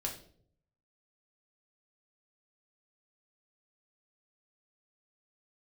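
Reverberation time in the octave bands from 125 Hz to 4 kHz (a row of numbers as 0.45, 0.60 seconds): 1.0, 0.75, 0.70, 0.45, 0.40, 0.40 seconds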